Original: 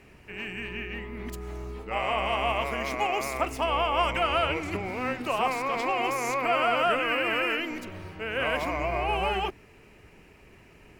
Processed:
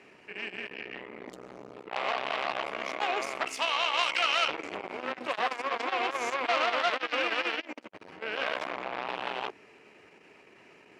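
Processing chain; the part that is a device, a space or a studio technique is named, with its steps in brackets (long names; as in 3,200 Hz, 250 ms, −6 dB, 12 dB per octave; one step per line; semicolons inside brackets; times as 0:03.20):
0:03.46–0:04.48: tilt shelving filter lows −9.5 dB, about 1,300 Hz
public-address speaker with an overloaded transformer (saturating transformer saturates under 2,400 Hz; band-pass filter 290–6,400 Hz)
level +1.5 dB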